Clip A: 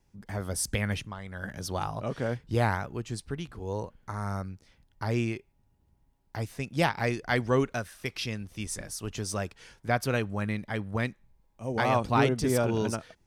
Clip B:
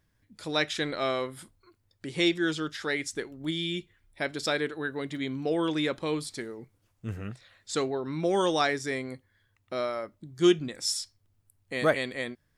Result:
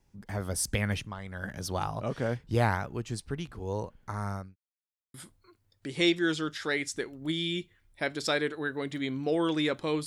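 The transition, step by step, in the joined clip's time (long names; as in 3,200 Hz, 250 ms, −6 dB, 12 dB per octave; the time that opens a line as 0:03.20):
clip A
0:04.14–0:04.56: fade out equal-power
0:04.56–0:05.14: silence
0:05.14: continue with clip B from 0:01.33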